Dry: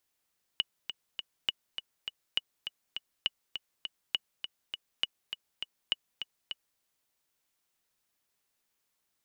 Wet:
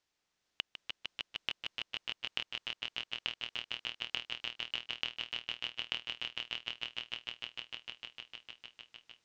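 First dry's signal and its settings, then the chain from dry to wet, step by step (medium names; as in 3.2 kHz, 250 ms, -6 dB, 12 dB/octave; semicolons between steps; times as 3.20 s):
metronome 203 bpm, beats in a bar 3, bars 7, 2.93 kHz, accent 8.5 dB -14 dBFS
low-pass 6.5 kHz 24 dB/octave; inverted gate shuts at -23 dBFS, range -33 dB; on a send: echo with a slow build-up 152 ms, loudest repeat 5, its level -4 dB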